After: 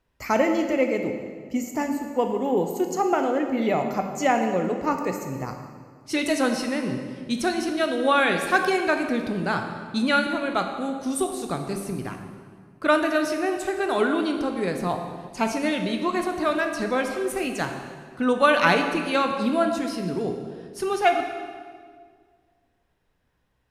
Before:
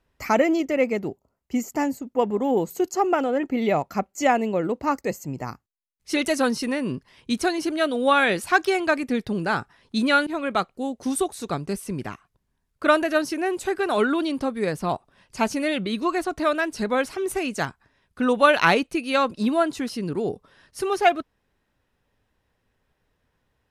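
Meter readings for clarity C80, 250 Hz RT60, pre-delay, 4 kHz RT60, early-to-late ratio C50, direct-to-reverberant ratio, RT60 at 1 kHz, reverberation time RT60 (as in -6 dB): 7.0 dB, 2.1 s, 13 ms, 1.5 s, 6.0 dB, 4.5 dB, 1.7 s, 1.8 s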